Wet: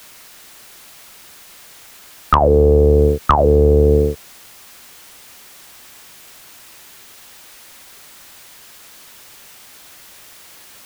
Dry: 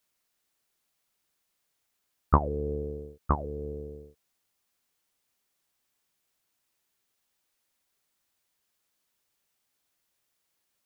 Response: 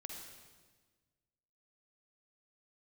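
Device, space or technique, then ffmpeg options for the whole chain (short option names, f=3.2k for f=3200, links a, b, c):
mastering chain: -filter_complex "[0:a]equalizer=f=1.8k:t=o:w=2.9:g=3,acrossover=split=100|580[a][b][c];[a]acompressor=threshold=-41dB:ratio=4[d];[b]acompressor=threshold=-43dB:ratio=4[e];[c]acompressor=threshold=-28dB:ratio=4[f];[d][e][f]amix=inputs=3:normalize=0,acompressor=threshold=-45dB:ratio=1.5,asoftclip=type=tanh:threshold=-21dB,asoftclip=type=hard:threshold=-26.5dB,alimiter=level_in=36dB:limit=-1dB:release=50:level=0:latency=1,volume=-1dB"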